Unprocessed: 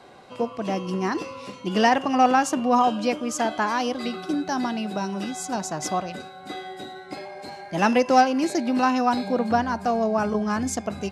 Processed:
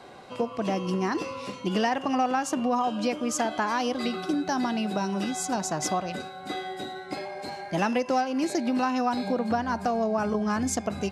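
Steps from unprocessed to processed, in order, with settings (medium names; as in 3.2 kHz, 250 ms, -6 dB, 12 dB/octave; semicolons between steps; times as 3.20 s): compression 4:1, threshold -25 dBFS, peak gain reduction 11.5 dB; trim +1.5 dB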